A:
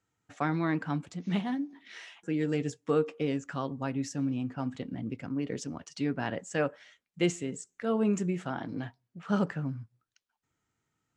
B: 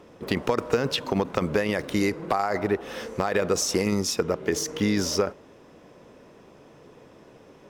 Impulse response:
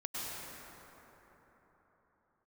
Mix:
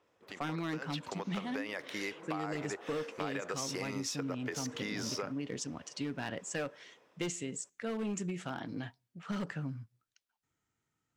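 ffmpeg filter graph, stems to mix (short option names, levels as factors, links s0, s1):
-filter_complex "[0:a]volume=14.1,asoftclip=hard,volume=0.0708,adynamicequalizer=threshold=0.00316:dfrequency=1900:dqfactor=0.7:tfrequency=1900:tqfactor=0.7:attack=5:release=100:ratio=0.375:range=3.5:mode=boostabove:tftype=highshelf,volume=0.668[s0];[1:a]highpass=f=1300:p=1,aemphasis=mode=reproduction:type=cd,dynaudnorm=f=140:g=13:m=4.47,volume=0.188[s1];[s0][s1]amix=inputs=2:normalize=0,acompressor=threshold=0.0224:ratio=6"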